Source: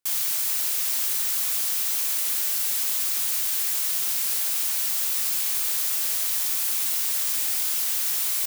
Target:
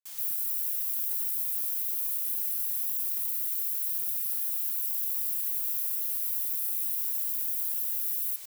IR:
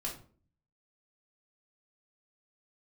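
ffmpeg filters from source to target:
-filter_complex "[0:a]afwtdn=0.0282,asplit=2[link_01][link_02];[link_02]alimiter=limit=-22dB:level=0:latency=1:release=146,volume=0.5dB[link_03];[link_01][link_03]amix=inputs=2:normalize=0,volume=-6.5dB"

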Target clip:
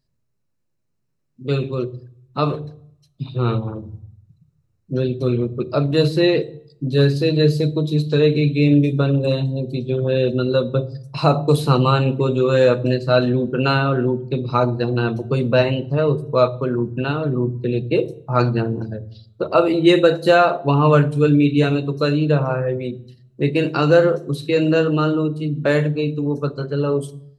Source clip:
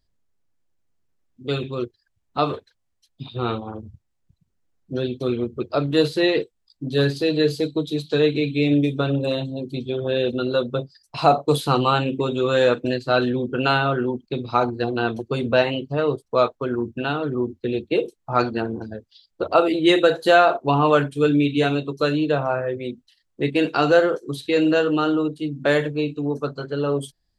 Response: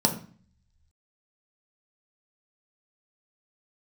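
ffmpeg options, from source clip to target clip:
-filter_complex "[0:a]asplit=2[link_01][link_02];[1:a]atrim=start_sample=2205,asetrate=30429,aresample=44100,lowshelf=frequency=180:gain=8.5[link_03];[link_02][link_03]afir=irnorm=-1:irlink=0,volume=-22.5dB[link_04];[link_01][link_04]amix=inputs=2:normalize=0,volume=-1dB"

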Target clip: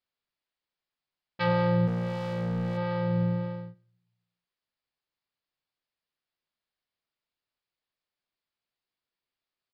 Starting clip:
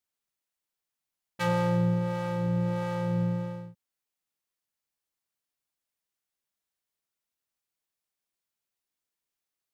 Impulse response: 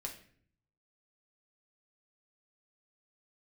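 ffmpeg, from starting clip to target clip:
-filter_complex "[0:a]aresample=11025,aresample=44100,asplit=3[link_01][link_02][link_03];[link_01]afade=type=out:start_time=1.86:duration=0.02[link_04];[link_02]asoftclip=type=hard:threshold=-28dB,afade=type=in:start_time=1.86:duration=0.02,afade=type=out:start_time=2.76:duration=0.02[link_05];[link_03]afade=type=in:start_time=2.76:duration=0.02[link_06];[link_04][link_05][link_06]amix=inputs=3:normalize=0,asplit=2[link_07][link_08];[1:a]atrim=start_sample=2205,asetrate=41895,aresample=44100[link_09];[link_08][link_09]afir=irnorm=-1:irlink=0,volume=-11.5dB[link_10];[link_07][link_10]amix=inputs=2:normalize=0"

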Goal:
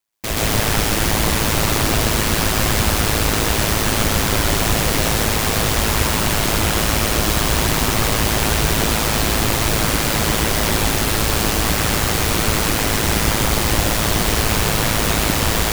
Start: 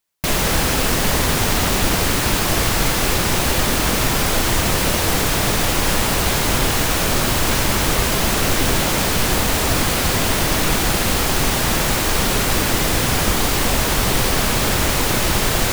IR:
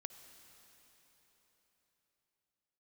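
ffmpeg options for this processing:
-filter_complex "[0:a]aeval=exprs='val(0)*sin(2*PI*54*n/s)':channel_layout=same,asplit=2[link_01][link_02];[1:a]atrim=start_sample=2205,adelay=128[link_03];[link_02][link_03]afir=irnorm=-1:irlink=0,volume=6dB[link_04];[link_01][link_04]amix=inputs=2:normalize=0,volume=-1dB"

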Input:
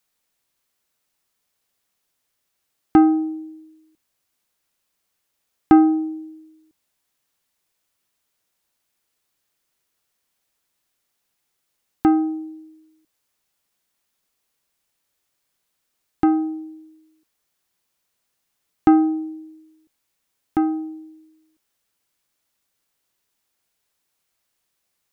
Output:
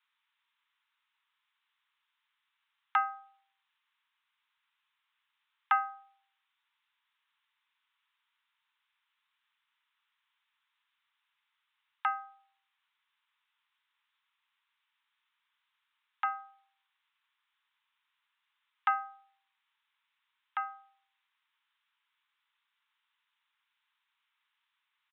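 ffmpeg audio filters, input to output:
ffmpeg -i in.wav -af "asuperpass=centerf=2200:order=20:qfactor=0.5,aresample=8000,aresample=44100,volume=1.5dB" out.wav

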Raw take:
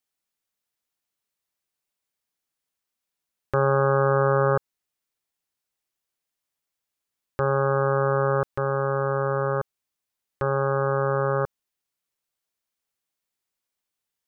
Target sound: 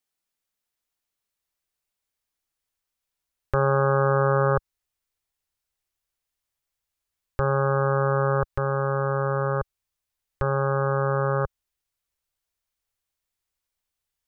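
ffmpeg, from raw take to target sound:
ffmpeg -i in.wav -af "asubboost=boost=6:cutoff=81" out.wav

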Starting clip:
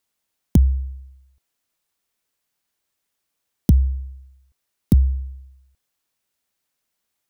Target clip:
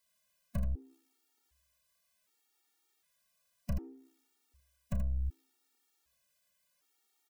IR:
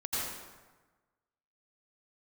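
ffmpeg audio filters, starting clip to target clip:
-filter_complex "[0:a]lowshelf=frequency=320:gain=-7,aeval=exprs='(tanh(50.1*val(0)+0.7)-tanh(0.7))/50.1':channel_layout=same,aecho=1:1:33|79:0.299|0.501,asplit=2[link_01][link_02];[1:a]atrim=start_sample=2205,asetrate=61740,aresample=44100[link_03];[link_02][link_03]afir=irnorm=-1:irlink=0,volume=-29dB[link_04];[link_01][link_04]amix=inputs=2:normalize=0,alimiter=level_in=9dB:limit=-24dB:level=0:latency=1:release=30,volume=-9dB,afftfilt=real='re*gt(sin(2*PI*0.66*pts/sr)*(1-2*mod(floor(b*sr/1024/240),2)),0)':imag='im*gt(sin(2*PI*0.66*pts/sr)*(1-2*mod(floor(b*sr/1024/240),2)),0)':win_size=1024:overlap=0.75,volume=6.5dB"

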